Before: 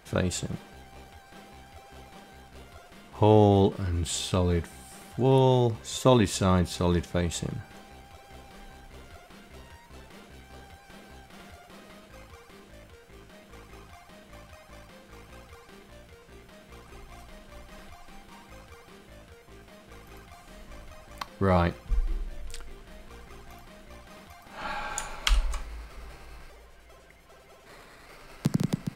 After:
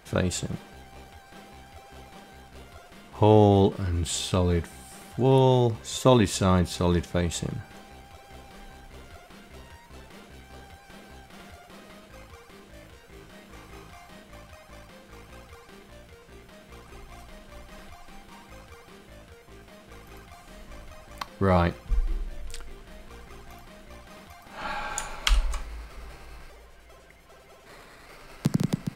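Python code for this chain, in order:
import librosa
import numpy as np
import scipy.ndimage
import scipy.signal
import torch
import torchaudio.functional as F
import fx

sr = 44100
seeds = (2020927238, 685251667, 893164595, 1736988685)

y = fx.doubler(x, sr, ms=31.0, db=-4, at=(12.71, 14.22))
y = F.gain(torch.from_numpy(y), 1.5).numpy()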